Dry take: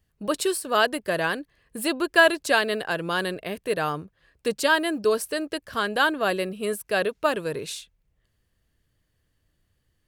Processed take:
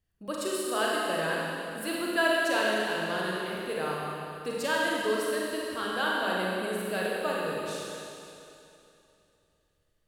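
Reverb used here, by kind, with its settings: Schroeder reverb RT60 2.8 s, combs from 33 ms, DRR -4.5 dB; gain -10.5 dB

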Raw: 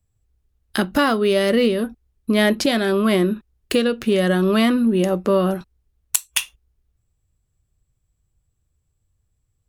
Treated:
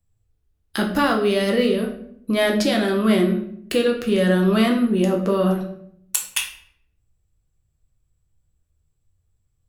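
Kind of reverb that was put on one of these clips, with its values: shoebox room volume 120 m³, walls mixed, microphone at 0.7 m; gain -3.5 dB

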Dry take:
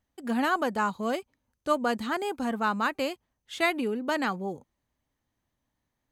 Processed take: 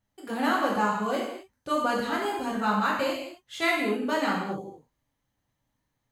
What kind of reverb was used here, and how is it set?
non-linear reverb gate 0.29 s falling, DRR -4.5 dB; gain -4 dB

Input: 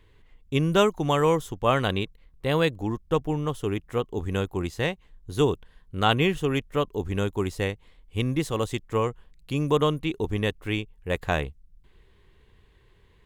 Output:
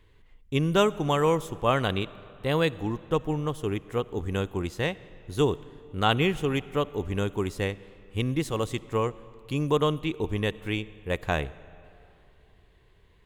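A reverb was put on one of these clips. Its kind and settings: digital reverb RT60 2.9 s, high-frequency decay 0.7×, pre-delay 25 ms, DRR 18.5 dB; gain -1.5 dB

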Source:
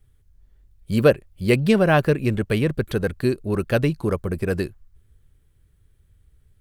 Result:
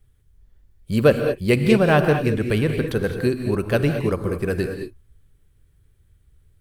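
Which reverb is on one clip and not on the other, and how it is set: non-linear reverb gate 0.24 s rising, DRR 5.5 dB

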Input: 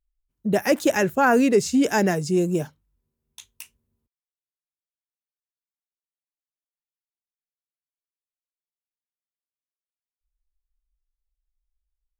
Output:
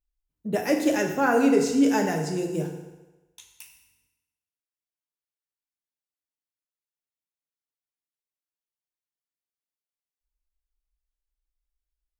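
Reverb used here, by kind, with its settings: FDN reverb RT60 1.1 s, low-frequency decay 0.85×, high-frequency decay 0.9×, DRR 1.5 dB; gain -6 dB

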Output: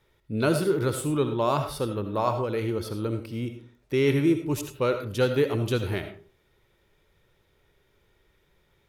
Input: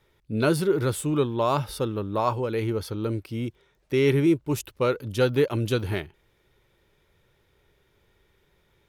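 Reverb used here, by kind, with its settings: digital reverb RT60 0.41 s, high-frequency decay 0.45×, pre-delay 40 ms, DRR 7.5 dB; gain -1.5 dB

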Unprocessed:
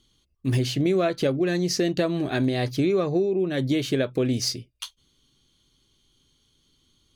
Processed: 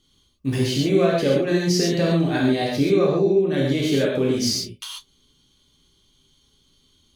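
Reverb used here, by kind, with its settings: non-linear reverb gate 0.16 s flat, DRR -4 dB; gain -1.5 dB

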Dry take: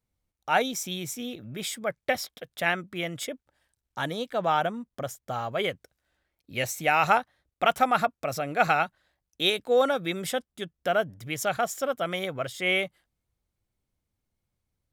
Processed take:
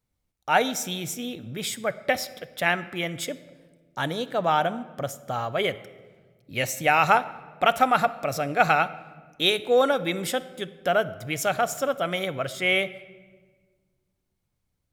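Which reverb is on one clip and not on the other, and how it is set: shoebox room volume 1400 m³, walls mixed, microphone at 0.36 m; gain +2.5 dB

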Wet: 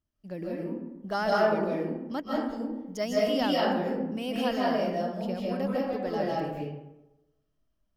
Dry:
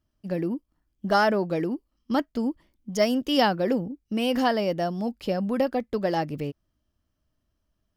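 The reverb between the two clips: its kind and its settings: digital reverb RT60 0.99 s, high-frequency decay 0.5×, pre-delay 0.115 s, DRR -5 dB; gain -9.5 dB

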